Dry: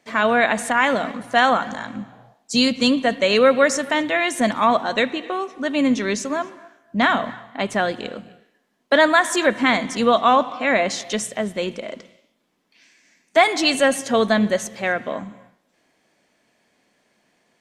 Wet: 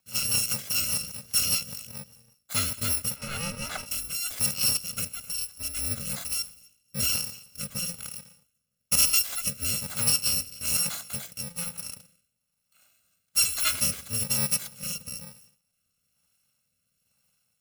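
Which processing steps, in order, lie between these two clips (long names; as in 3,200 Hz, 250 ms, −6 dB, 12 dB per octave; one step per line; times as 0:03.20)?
samples in bit-reversed order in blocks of 128 samples
0:03.16–0:03.86: mid-hump overdrive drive 16 dB, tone 1,100 Hz, clips at −5 dBFS
rotating-speaker cabinet horn 5 Hz, later 1.1 Hz, at 0:03.03
level −5.5 dB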